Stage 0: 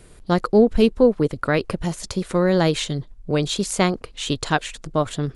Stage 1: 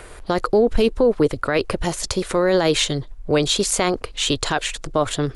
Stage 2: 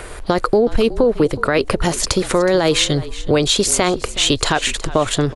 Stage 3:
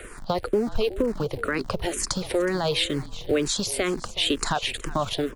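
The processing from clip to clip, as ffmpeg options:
ffmpeg -i in.wav -filter_complex "[0:a]equalizer=frequency=180:width_type=o:width=1:gain=-10,acrossover=split=540|2300[link_01][link_02][link_03];[link_02]acompressor=mode=upward:threshold=-44dB:ratio=2.5[link_04];[link_01][link_04][link_03]amix=inputs=3:normalize=0,alimiter=limit=-15.5dB:level=0:latency=1:release=22,volume=7dB" out.wav
ffmpeg -i in.wav -filter_complex "[0:a]acompressor=threshold=-21dB:ratio=2.5,asplit=4[link_01][link_02][link_03][link_04];[link_02]adelay=369,afreqshift=-37,volume=-17dB[link_05];[link_03]adelay=738,afreqshift=-74,volume=-27.5dB[link_06];[link_04]adelay=1107,afreqshift=-111,volume=-37.9dB[link_07];[link_01][link_05][link_06][link_07]amix=inputs=4:normalize=0,volume=7.5dB" out.wav
ffmpeg -i in.wav -filter_complex "[0:a]acrossover=split=210[link_01][link_02];[link_01]acrusher=bits=6:dc=4:mix=0:aa=0.000001[link_03];[link_03][link_02]amix=inputs=2:normalize=0,asplit=2[link_04][link_05];[link_05]afreqshift=-2.1[link_06];[link_04][link_06]amix=inputs=2:normalize=1,volume=-6dB" out.wav

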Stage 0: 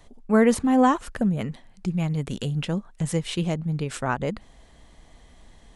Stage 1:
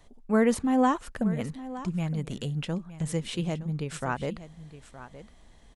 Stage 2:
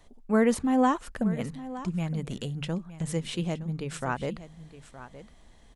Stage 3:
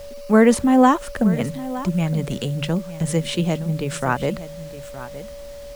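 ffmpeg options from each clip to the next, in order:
ffmpeg -i in.wav -af "aecho=1:1:916:0.178,volume=-4.5dB" out.wav
ffmpeg -i in.wav -af "bandreject=frequency=50:width_type=h:width=6,bandreject=frequency=100:width_type=h:width=6,bandreject=frequency=150:width_type=h:width=6" out.wav
ffmpeg -i in.wav -filter_complex "[0:a]acrossover=split=140|820[link_01][link_02][link_03];[link_01]acompressor=mode=upward:threshold=-45dB:ratio=2.5[link_04];[link_04][link_02][link_03]amix=inputs=3:normalize=0,aeval=exprs='val(0)+0.00631*sin(2*PI*570*n/s)':channel_layout=same,acrusher=bits=8:mix=0:aa=0.000001,volume=9dB" out.wav

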